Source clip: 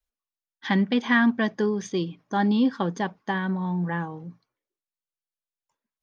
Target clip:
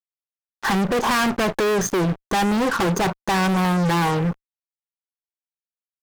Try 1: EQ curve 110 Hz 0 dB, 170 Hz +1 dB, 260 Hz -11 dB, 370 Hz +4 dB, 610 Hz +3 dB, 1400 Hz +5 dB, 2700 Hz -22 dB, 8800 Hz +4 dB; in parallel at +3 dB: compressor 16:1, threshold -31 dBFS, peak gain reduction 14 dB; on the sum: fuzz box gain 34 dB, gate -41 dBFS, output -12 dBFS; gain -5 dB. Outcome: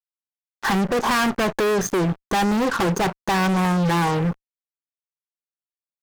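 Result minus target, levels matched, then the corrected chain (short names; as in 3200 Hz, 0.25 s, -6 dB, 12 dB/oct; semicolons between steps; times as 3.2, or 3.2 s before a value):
compressor: peak gain reduction +6.5 dB
EQ curve 110 Hz 0 dB, 170 Hz +1 dB, 260 Hz -11 dB, 370 Hz +4 dB, 610 Hz +3 dB, 1400 Hz +5 dB, 2700 Hz -22 dB, 8800 Hz +4 dB; in parallel at +3 dB: compressor 16:1, threshold -24 dBFS, peak gain reduction 7.5 dB; on the sum: fuzz box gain 34 dB, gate -41 dBFS, output -12 dBFS; gain -5 dB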